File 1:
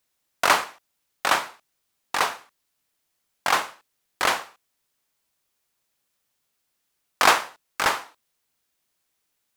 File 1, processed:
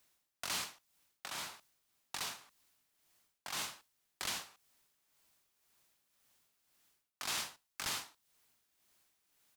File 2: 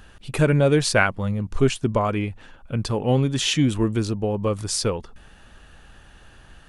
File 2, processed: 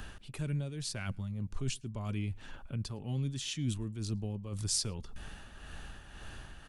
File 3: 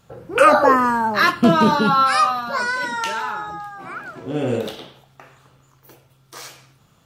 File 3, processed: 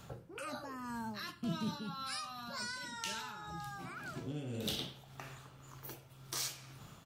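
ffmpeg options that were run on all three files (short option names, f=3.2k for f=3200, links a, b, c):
-filter_complex "[0:a]bandreject=f=500:w=12,areverse,acompressor=threshold=-30dB:ratio=12,areverse,tremolo=f=1.9:d=0.56,acrossover=split=220|3000[a][b][c];[b]acompressor=threshold=-54dB:ratio=3[d];[a][d][c]amix=inputs=3:normalize=0,asplit=2[e][f];[f]adelay=110.8,volume=-30dB,highshelf=f=4k:g=-2.49[g];[e][g]amix=inputs=2:normalize=0,volume=3.5dB"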